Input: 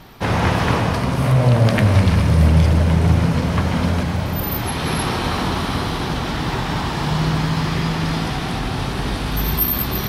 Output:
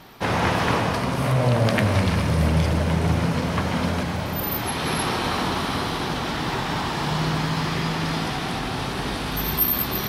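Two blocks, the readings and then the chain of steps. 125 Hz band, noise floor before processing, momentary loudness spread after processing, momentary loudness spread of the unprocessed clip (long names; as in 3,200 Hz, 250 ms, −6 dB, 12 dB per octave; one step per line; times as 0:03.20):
−7.0 dB, −24 dBFS, 6 LU, 8 LU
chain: low-shelf EQ 130 Hz −10 dB
level −1.5 dB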